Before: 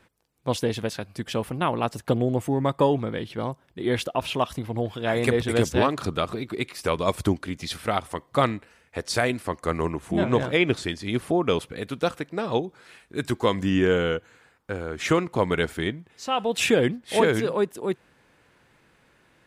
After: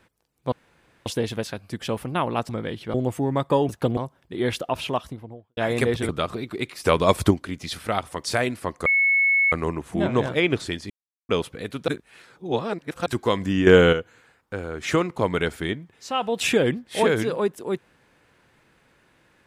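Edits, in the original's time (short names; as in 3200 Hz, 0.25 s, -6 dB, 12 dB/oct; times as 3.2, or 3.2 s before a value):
0.52 insert room tone 0.54 s
1.95–2.23 swap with 2.98–3.43
4.25–5.03 studio fade out
5.55–6.08 cut
6.83–7.3 gain +5.5 dB
8.23–9.07 cut
9.69 add tone 2200 Hz -16 dBFS 0.66 s
11.07–11.46 mute
12.05–13.23 reverse
13.84–14.1 gain +8 dB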